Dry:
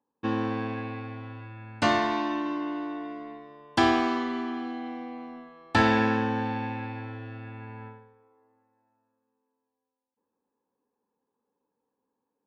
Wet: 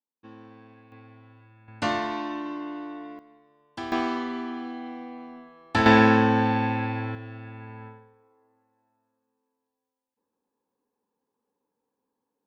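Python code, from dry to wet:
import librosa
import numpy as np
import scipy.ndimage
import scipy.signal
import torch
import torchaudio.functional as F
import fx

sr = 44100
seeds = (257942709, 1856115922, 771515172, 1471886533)

y = fx.gain(x, sr, db=fx.steps((0.0, -19.0), (0.92, -12.0), (1.68, -3.0), (3.19, -13.5), (3.92, -1.0), (5.86, 7.0), (7.15, 0.0)))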